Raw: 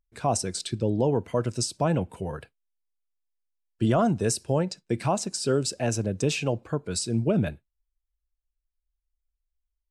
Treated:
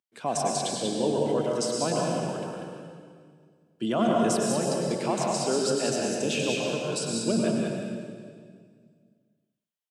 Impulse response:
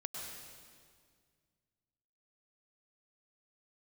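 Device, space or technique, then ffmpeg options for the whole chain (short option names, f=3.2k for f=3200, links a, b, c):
PA in a hall: -filter_complex "[0:a]highpass=f=180:w=0.5412,highpass=f=180:w=1.3066,equalizer=f=3.1k:t=o:w=0.34:g=7,aecho=1:1:192:0.562[a];[1:a]atrim=start_sample=2205[b];[a][b]afir=irnorm=-1:irlink=0"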